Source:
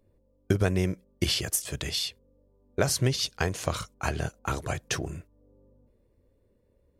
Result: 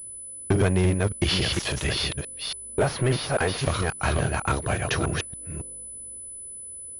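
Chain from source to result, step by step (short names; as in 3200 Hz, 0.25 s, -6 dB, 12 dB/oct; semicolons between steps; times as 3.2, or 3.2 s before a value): reverse delay 0.281 s, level -4 dB; 1.37–2.07 transient shaper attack -8 dB, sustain +9 dB; soft clip -21 dBFS, distortion -13 dB; 2.79–3.58 overdrive pedal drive 18 dB, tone 1400 Hz, clips at -21 dBFS; pulse-width modulation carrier 10000 Hz; gain +6.5 dB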